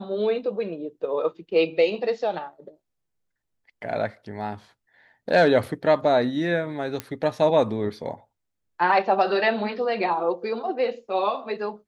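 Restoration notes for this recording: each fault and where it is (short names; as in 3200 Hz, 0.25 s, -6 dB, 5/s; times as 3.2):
7 pop -13 dBFS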